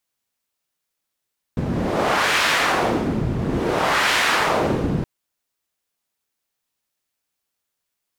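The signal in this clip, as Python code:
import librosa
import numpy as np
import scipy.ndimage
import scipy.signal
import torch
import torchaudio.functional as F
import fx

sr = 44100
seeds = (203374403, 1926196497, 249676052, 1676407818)

y = fx.wind(sr, seeds[0], length_s=3.47, low_hz=150.0, high_hz=2000.0, q=1.0, gusts=2, swing_db=4.0)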